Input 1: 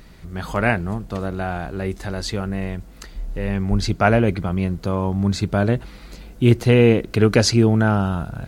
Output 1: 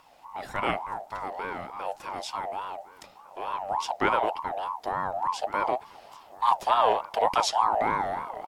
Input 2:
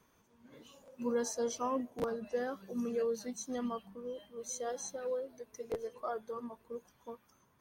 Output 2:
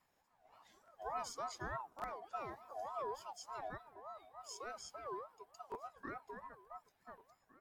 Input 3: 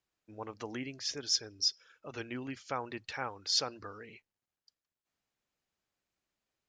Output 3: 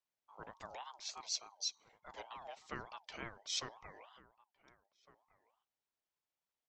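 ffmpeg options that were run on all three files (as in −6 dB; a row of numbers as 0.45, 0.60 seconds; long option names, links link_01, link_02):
-filter_complex "[0:a]highpass=frequency=63:width=0.5412,highpass=frequency=63:width=1.3066,afreqshift=-190,asplit=2[link_01][link_02];[link_02]adelay=1458,volume=-19dB,highshelf=frequency=4000:gain=-32.8[link_03];[link_01][link_03]amix=inputs=2:normalize=0,aeval=exprs='val(0)*sin(2*PI*850*n/s+850*0.2/3.4*sin(2*PI*3.4*n/s))':channel_layout=same,volume=-6dB"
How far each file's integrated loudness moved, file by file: −8.5, −8.5, −9.5 LU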